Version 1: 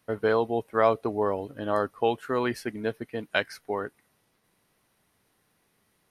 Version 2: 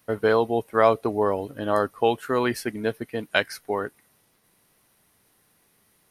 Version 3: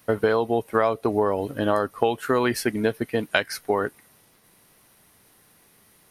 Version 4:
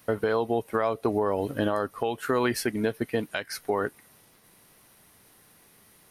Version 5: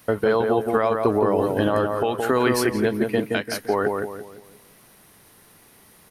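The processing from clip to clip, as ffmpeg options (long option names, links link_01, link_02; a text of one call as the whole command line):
ffmpeg -i in.wav -af "highshelf=frequency=7400:gain=8.5,volume=3.5dB" out.wav
ffmpeg -i in.wav -af "acompressor=threshold=-24dB:ratio=6,volume=6.5dB" out.wav
ffmpeg -i in.wav -af "alimiter=limit=-14dB:level=0:latency=1:release=290" out.wav
ffmpeg -i in.wav -filter_complex "[0:a]asplit=2[link_01][link_02];[link_02]adelay=171,lowpass=frequency=1500:poles=1,volume=-3dB,asplit=2[link_03][link_04];[link_04]adelay=171,lowpass=frequency=1500:poles=1,volume=0.4,asplit=2[link_05][link_06];[link_06]adelay=171,lowpass=frequency=1500:poles=1,volume=0.4,asplit=2[link_07][link_08];[link_08]adelay=171,lowpass=frequency=1500:poles=1,volume=0.4,asplit=2[link_09][link_10];[link_10]adelay=171,lowpass=frequency=1500:poles=1,volume=0.4[link_11];[link_01][link_03][link_05][link_07][link_09][link_11]amix=inputs=6:normalize=0,volume=4.5dB" out.wav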